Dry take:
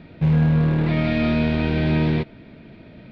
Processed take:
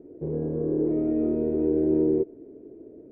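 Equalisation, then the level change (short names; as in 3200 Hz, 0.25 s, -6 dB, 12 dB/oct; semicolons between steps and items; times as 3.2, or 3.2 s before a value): synth low-pass 420 Hz, resonance Q 4.9; resonant low shelf 240 Hz -6.5 dB, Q 3; -8.0 dB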